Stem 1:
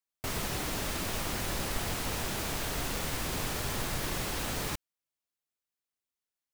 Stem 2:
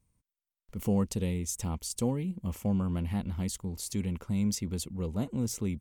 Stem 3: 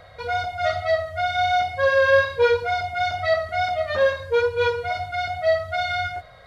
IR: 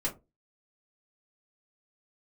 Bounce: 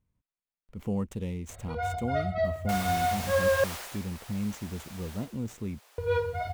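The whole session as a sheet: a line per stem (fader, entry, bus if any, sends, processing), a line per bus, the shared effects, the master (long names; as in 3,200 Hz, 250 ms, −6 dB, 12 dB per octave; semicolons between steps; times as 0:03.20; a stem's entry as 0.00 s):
0:03.73 −1.5 dB → 0:04.06 −12.5 dB → 0:05.16 −12.5 dB → 0:05.39 −23.5 dB, 2.45 s, no send, high-pass filter 510 Hz 24 dB per octave; upward compression, threshold −45 dBFS
−3.0 dB, 0.00 s, no send, running median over 9 samples
−8.5 dB, 1.50 s, muted 0:03.64–0:05.98, no send, spectral tilt −3 dB per octave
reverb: not used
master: no processing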